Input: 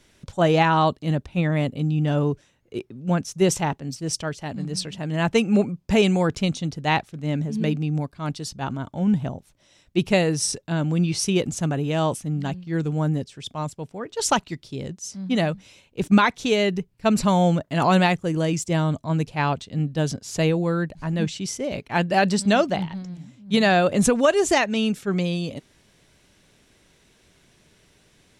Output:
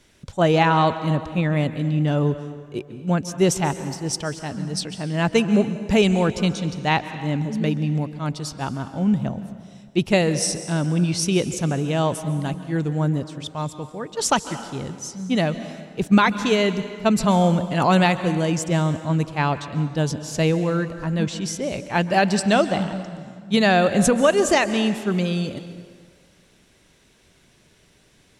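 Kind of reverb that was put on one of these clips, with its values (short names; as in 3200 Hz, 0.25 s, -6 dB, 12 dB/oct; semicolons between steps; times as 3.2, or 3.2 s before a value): plate-style reverb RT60 1.9 s, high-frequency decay 0.75×, pre-delay 0.12 s, DRR 11.5 dB; gain +1 dB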